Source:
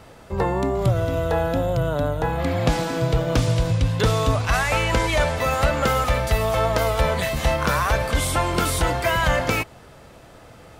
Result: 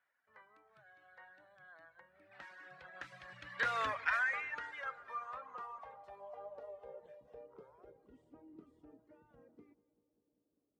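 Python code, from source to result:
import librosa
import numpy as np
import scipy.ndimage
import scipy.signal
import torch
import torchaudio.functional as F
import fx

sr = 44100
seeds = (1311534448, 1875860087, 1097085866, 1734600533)

y = fx.doppler_pass(x, sr, speed_mps=35, closest_m=5.8, pass_at_s=3.85)
y = fx.dereverb_blind(y, sr, rt60_s=1.1)
y = fx.spec_box(y, sr, start_s=2.0, length_s=0.32, low_hz=680.0, high_hz=8300.0, gain_db=-12)
y = fx.filter_sweep_bandpass(y, sr, from_hz=1700.0, to_hz=300.0, start_s=4.46, end_s=8.26, q=4.1)
y = fx.echo_filtered(y, sr, ms=196, feedback_pct=77, hz=1400.0, wet_db=-18.5)
y = F.gain(torch.from_numpy(y), 4.0).numpy()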